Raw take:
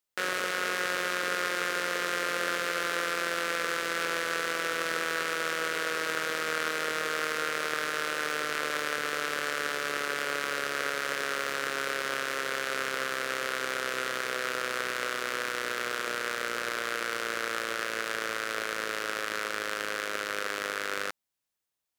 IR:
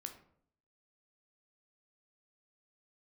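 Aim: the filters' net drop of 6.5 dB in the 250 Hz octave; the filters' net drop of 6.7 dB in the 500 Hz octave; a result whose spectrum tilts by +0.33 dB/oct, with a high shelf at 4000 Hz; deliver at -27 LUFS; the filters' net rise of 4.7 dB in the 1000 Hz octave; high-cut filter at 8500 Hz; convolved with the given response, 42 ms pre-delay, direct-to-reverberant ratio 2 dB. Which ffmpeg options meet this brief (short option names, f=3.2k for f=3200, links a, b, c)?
-filter_complex "[0:a]lowpass=8.5k,equalizer=f=250:t=o:g=-6,equalizer=f=500:t=o:g=-8.5,equalizer=f=1k:t=o:g=8,highshelf=f=4k:g=5,asplit=2[a][b];[1:a]atrim=start_sample=2205,adelay=42[c];[b][c]afir=irnorm=-1:irlink=0,volume=2dB[d];[a][d]amix=inputs=2:normalize=0,volume=-1.5dB"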